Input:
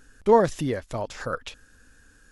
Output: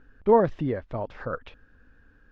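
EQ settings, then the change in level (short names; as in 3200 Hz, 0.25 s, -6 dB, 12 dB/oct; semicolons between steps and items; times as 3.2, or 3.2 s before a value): air absorption 270 m; high shelf 3400 Hz -12 dB; 0.0 dB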